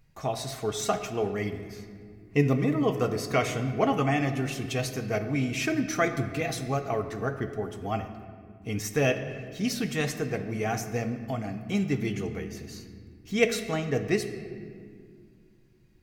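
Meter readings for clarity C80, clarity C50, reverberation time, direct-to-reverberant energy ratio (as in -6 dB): 10.5 dB, 9.5 dB, 2.1 s, 6.0 dB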